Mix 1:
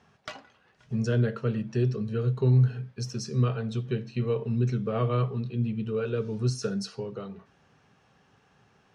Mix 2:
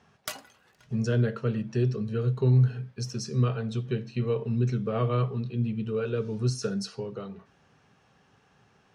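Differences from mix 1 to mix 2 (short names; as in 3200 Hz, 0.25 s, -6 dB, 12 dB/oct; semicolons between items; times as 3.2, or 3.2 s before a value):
background: remove air absorption 170 m; master: add high shelf 10000 Hz +4 dB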